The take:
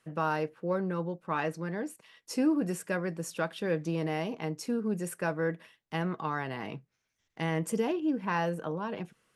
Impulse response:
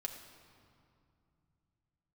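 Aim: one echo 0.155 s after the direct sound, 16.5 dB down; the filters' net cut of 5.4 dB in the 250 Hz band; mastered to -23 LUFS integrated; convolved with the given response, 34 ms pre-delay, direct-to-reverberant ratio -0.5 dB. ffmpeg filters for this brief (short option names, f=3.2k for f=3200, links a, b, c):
-filter_complex "[0:a]equalizer=f=250:t=o:g=-8,aecho=1:1:155:0.15,asplit=2[a][b];[1:a]atrim=start_sample=2205,adelay=34[c];[b][c]afir=irnorm=-1:irlink=0,volume=1.5dB[d];[a][d]amix=inputs=2:normalize=0,volume=9dB"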